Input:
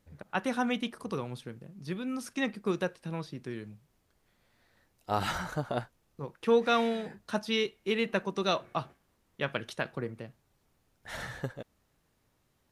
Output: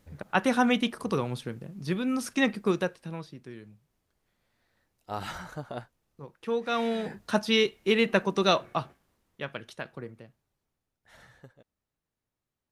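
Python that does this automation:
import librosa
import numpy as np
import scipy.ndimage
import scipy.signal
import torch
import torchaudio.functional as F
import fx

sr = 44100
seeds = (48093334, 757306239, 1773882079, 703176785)

y = fx.gain(x, sr, db=fx.line((2.55, 6.5), (3.43, -5.0), (6.64, -5.0), (7.07, 6.0), (8.48, 6.0), (9.53, -4.5), (10.08, -4.5), (11.1, -15.5)))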